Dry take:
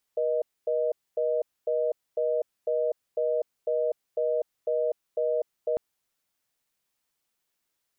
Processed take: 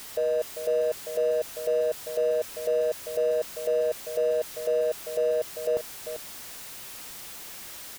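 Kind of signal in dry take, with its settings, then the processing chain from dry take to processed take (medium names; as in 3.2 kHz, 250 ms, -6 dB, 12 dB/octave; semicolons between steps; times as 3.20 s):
call progress tone reorder tone, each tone -26 dBFS 5.60 s
jump at every zero crossing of -35.5 dBFS; on a send: delay 394 ms -9.5 dB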